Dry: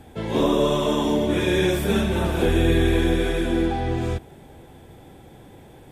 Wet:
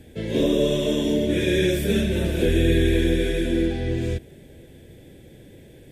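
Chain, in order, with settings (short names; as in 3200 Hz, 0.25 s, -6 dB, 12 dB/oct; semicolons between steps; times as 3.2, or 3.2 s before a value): band shelf 1000 Hz -16 dB 1.1 oct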